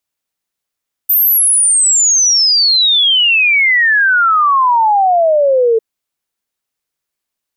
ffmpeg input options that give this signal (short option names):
-f lavfi -i "aevalsrc='0.422*clip(min(t,4.7-t)/0.01,0,1)*sin(2*PI*14000*4.7/log(440/14000)*(exp(log(440/14000)*t/4.7)-1))':d=4.7:s=44100"